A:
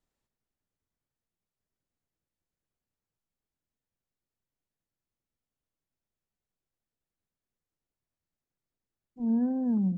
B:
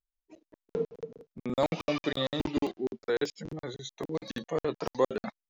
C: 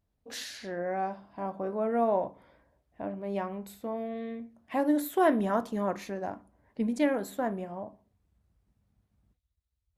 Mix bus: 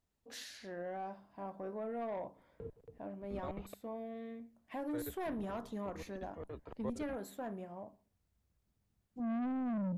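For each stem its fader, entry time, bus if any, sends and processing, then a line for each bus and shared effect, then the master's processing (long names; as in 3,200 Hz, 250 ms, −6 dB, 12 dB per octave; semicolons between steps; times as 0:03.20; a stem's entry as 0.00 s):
−2.5 dB, 0.00 s, bus A, no send, automatic gain control gain up to 5.5 dB
−17.0 dB, 1.85 s, muted 0:03.74–0:04.91, no bus, no send, sub-octave generator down 2 octaves, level +2 dB; moving average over 8 samples
−8.5 dB, 0.00 s, bus A, no send, no processing
bus A: 0.0 dB, soft clipping −31 dBFS, distortion −6 dB; brickwall limiter −34.5 dBFS, peak gain reduction 3.5 dB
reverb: not used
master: no processing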